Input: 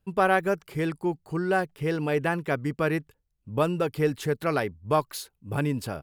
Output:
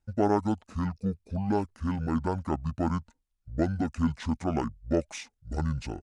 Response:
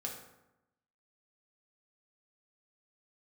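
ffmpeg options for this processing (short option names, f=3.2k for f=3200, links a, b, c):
-af "asetrate=24046,aresample=44100,atempo=1.83401,volume=-2.5dB"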